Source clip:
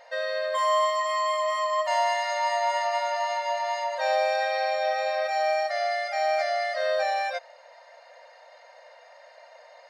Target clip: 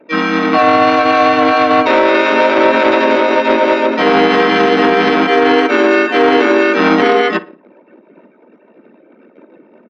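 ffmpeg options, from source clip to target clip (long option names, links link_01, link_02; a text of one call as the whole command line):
ffmpeg -i in.wav -filter_complex "[0:a]anlmdn=0.0398,aeval=exprs='0.224*(cos(1*acos(clip(val(0)/0.224,-1,1)))-cos(1*PI/2))+0.112*(cos(2*acos(clip(val(0)/0.224,-1,1)))-cos(2*PI/2))+0.00178*(cos(6*acos(clip(val(0)/0.224,-1,1)))-cos(6*PI/2))+0.0141*(cos(7*acos(clip(val(0)/0.224,-1,1)))-cos(7*PI/2))+0.00501*(cos(8*acos(clip(val(0)/0.224,-1,1)))-cos(8*PI/2))':channel_layout=same,asplit=2[link_01][link_02];[link_02]adelay=60,lowpass=frequency=2100:poles=1,volume=-16dB,asplit=2[link_03][link_04];[link_04]adelay=60,lowpass=frequency=2100:poles=1,volume=0.42,asplit=2[link_05][link_06];[link_06]adelay=60,lowpass=frequency=2100:poles=1,volume=0.42,asplit=2[link_07][link_08];[link_08]adelay=60,lowpass=frequency=2100:poles=1,volume=0.42[link_09];[link_01][link_03][link_05][link_07][link_09]amix=inputs=5:normalize=0,highpass=frequency=580:width_type=q:width=0.5412,highpass=frequency=580:width_type=q:width=1.307,lowpass=frequency=3300:width_type=q:width=0.5176,lowpass=frequency=3300:width_type=q:width=0.7071,lowpass=frequency=3300:width_type=q:width=1.932,afreqshift=-310,asplit=3[link_10][link_11][link_12];[link_11]asetrate=37084,aresample=44100,atempo=1.18921,volume=-1dB[link_13];[link_12]asetrate=66075,aresample=44100,atempo=0.66742,volume=-1dB[link_14];[link_10][link_13][link_14]amix=inputs=3:normalize=0,alimiter=level_in=16dB:limit=-1dB:release=50:level=0:latency=1" -ar 44100 -c:a libmp3lame -b:a 80k out.mp3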